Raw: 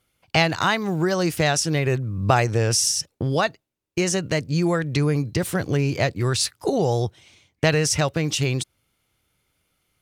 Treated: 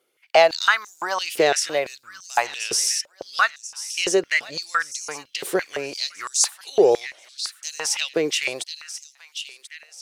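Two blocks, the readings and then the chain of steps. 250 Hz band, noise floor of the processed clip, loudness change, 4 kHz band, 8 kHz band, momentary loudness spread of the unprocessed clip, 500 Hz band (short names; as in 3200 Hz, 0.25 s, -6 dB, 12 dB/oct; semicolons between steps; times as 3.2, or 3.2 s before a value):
-9.0 dB, -60 dBFS, -0.5 dB, +1.5 dB, +1.5 dB, 6 LU, +1.5 dB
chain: thin delay 1.036 s, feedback 37%, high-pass 2300 Hz, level -11 dB; stepped high-pass 5.9 Hz 410–6500 Hz; gain -1 dB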